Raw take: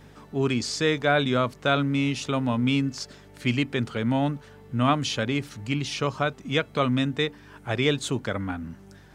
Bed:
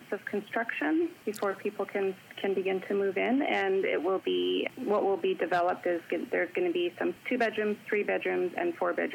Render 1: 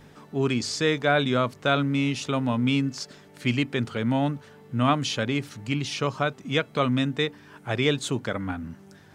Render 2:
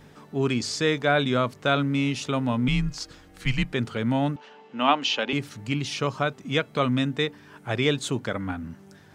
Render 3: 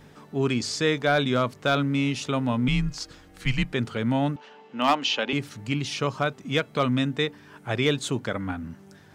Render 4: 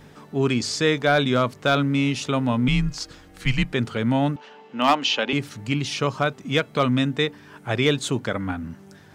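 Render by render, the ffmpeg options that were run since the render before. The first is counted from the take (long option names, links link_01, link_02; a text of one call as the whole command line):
ffmpeg -i in.wav -af "bandreject=frequency=50:width_type=h:width=4,bandreject=frequency=100:width_type=h:width=4" out.wav
ffmpeg -i in.wav -filter_complex "[0:a]asettb=1/sr,asplit=3[link_01][link_02][link_03];[link_01]atrim=end=2.684[link_04];[link_02]atrim=start=2.68:end=3.73,asetpts=PTS-STARTPTS,afade=type=in:duration=0.004:curve=qsin,afade=type=out:start_time=1.046:duration=0.004:curve=qsin,afreqshift=-110[link_05];[link_03]atrim=start=3.726[link_06];[link_04][link_05]acrossfade=duration=0.004:curve1=hsin:curve2=qsin[link_07];[link_07][link_06]acrossfade=duration=0.004:curve1=qsin:curve2=hsin,asettb=1/sr,asplit=3[link_08][link_09][link_10];[link_08]atrim=end=4.364[link_11];[link_09]atrim=start=4.36:end=5.33,asetpts=PTS-STARTPTS,afade=type=in:duration=0.004:curve=qsin,afade=type=out:start_time=0.966:duration=0.004:curve=qsin,highpass=frequency=250:width=0.5412,highpass=frequency=250:width=1.3066,equalizer=frequency=330:width_type=q:width=4:gain=-4,equalizer=frequency=860:width_type=q:width=4:gain=9,equalizer=frequency=2800:width_type=q:width=4:gain=10,lowpass=frequency=6100:width=0.5412,lowpass=frequency=6100:width=1.3066[link_12];[link_10]atrim=start=5.326[link_13];[link_11][link_12]acrossfade=duration=0.004:curve1=hsin:curve2=qsin[link_14];[link_14][link_13]acrossfade=duration=0.004:curve1=qsin:curve2=hsin" out.wav
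ffmpeg -i in.wav -af "asoftclip=type=hard:threshold=-12dB" out.wav
ffmpeg -i in.wav -af "volume=3dB" out.wav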